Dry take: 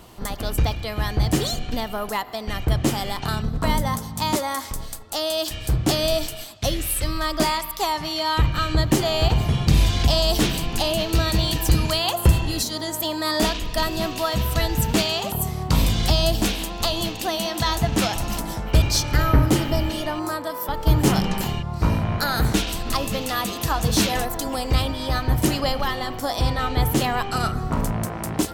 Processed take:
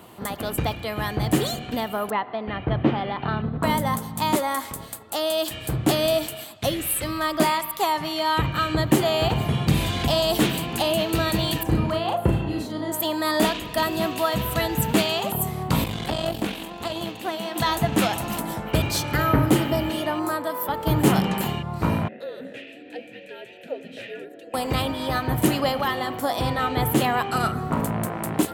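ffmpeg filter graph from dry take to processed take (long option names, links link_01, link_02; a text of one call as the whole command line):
ffmpeg -i in.wav -filter_complex "[0:a]asettb=1/sr,asplit=3[link_01][link_02][link_03];[link_01]atrim=end=2.104[link_04];[link_02]atrim=start=2.1:end=3.63,asetpts=PTS-STARTPTS,afade=type=in:duration=0.004:curve=qsin,afade=type=out:start_time=1.526:duration=0.004:curve=qsin,lowpass=frequency=3900:width=0.5412,lowpass=frequency=3900:width=1.3066,aemphasis=mode=reproduction:type=75fm[link_05];[link_03]atrim=start=3.626[link_06];[link_04][link_05]acrossfade=duration=0.004:curve1=hsin:curve2=qsin[link_07];[link_07][link_06]acrossfade=duration=0.004:curve1=qsin:curve2=hsin,asettb=1/sr,asplit=3[link_08][link_09][link_10];[link_08]atrim=end=11.634[link_11];[link_09]atrim=start=11.63:end=12.92,asetpts=PTS-STARTPTS,afade=type=in:duration=0.004:curve=qsin,afade=type=out:start_time=1.286:duration=0.004:curve=qsin,lowpass=frequency=1000:poles=1,asplit=2[link_12][link_13];[link_13]adelay=36,volume=-3.5dB[link_14];[link_12][link_14]amix=inputs=2:normalize=0,atrim=end_sample=56889[link_15];[link_10]atrim=start=12.916[link_16];[link_11][link_15]acrossfade=duration=0.004:curve1=hsin:curve2=qsin[link_17];[link_17][link_16]acrossfade=duration=0.004:curve1=qsin:curve2=hsin,asettb=1/sr,asplit=3[link_18][link_19][link_20];[link_18]atrim=end=15.844[link_21];[link_19]atrim=start=15.84:end=17.56,asetpts=PTS-STARTPTS,afade=type=in:duration=0.004:curve=qsin,afade=type=out:start_time=1.716:duration=0.004:curve=qsin,acrossover=split=4300[link_22][link_23];[link_23]acompressor=threshold=-35dB:ratio=4:attack=1:release=60[link_24];[link_22][link_24]amix=inputs=2:normalize=0,aeval=exprs='(tanh(6.31*val(0)+0.8)-tanh(0.8))/6.31':channel_layout=same[link_25];[link_20]atrim=start=17.556[link_26];[link_21][link_25]acrossfade=duration=0.004:curve1=hsin:curve2=qsin[link_27];[link_27][link_26]acrossfade=duration=0.004:curve1=qsin:curve2=hsin,asettb=1/sr,asplit=3[link_28][link_29][link_30];[link_28]atrim=end=22.084[link_31];[link_29]atrim=start=22.08:end=24.54,asetpts=PTS-STARTPTS,afade=type=in:duration=0.004:curve=qsin,afade=type=out:start_time=2.456:duration=0.004:curve=qsin,afreqshift=-320,asplit=3[link_32][link_33][link_34];[link_32]bandpass=frequency=530:width_type=q:width=8,volume=0dB[link_35];[link_33]bandpass=frequency=1840:width_type=q:width=8,volume=-6dB[link_36];[link_34]bandpass=frequency=2480:width_type=q:width=8,volume=-9dB[link_37];[link_35][link_36][link_37]amix=inputs=3:normalize=0[link_38];[link_30]atrim=start=24.536[link_39];[link_31][link_38]acrossfade=duration=0.004:curve1=hsin:curve2=qsin[link_40];[link_40][link_39]acrossfade=duration=0.004:curve1=qsin:curve2=hsin,highpass=130,equalizer=frequency=5500:width_type=o:width=0.78:gain=-10.5,volume=1.5dB" out.wav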